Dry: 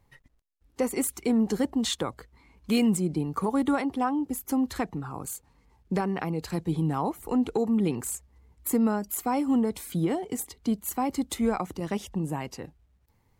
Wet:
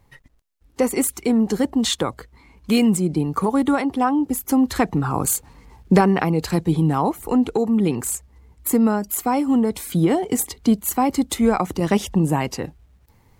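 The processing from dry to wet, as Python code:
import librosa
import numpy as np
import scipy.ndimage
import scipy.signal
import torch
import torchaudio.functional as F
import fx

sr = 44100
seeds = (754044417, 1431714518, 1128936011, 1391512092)

y = fx.rider(x, sr, range_db=10, speed_s=0.5)
y = F.gain(torch.from_numpy(y), 8.0).numpy()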